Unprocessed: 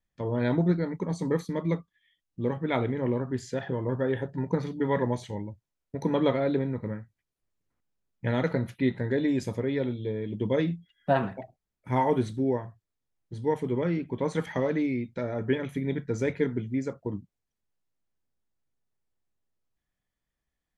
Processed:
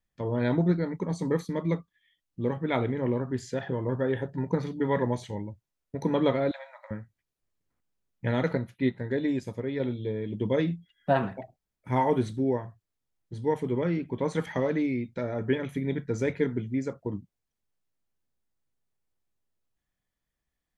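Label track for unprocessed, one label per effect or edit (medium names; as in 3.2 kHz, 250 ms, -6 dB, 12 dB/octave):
6.510000	6.910000	brick-wall FIR high-pass 540 Hz
8.570000	9.800000	upward expansion, over -38 dBFS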